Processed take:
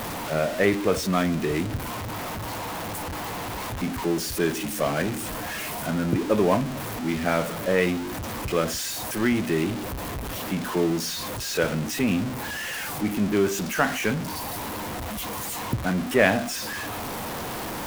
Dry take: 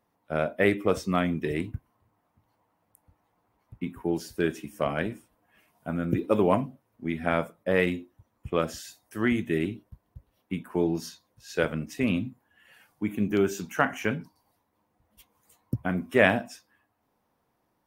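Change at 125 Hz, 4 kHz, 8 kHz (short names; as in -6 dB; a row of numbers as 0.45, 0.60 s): +4.0, +10.0, +14.5 dB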